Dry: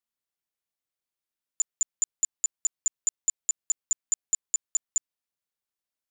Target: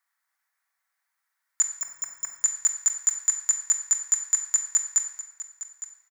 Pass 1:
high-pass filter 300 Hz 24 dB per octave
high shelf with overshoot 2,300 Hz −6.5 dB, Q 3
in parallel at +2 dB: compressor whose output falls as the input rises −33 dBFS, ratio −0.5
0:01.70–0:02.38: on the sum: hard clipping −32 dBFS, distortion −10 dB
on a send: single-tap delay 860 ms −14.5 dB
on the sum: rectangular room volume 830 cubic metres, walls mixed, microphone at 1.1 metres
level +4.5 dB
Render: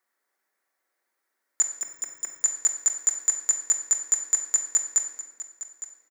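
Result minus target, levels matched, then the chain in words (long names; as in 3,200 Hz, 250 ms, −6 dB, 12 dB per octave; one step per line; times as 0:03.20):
250 Hz band +16.5 dB
high-pass filter 880 Hz 24 dB per octave
high shelf with overshoot 2,300 Hz −6.5 dB, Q 3
in parallel at +2 dB: compressor whose output falls as the input rises −33 dBFS, ratio −0.5
0:01.70–0:02.38: on the sum: hard clipping −32 dBFS, distortion −10 dB
on a send: single-tap delay 860 ms −14.5 dB
on the sum: rectangular room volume 830 cubic metres, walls mixed, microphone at 1.1 metres
level +4.5 dB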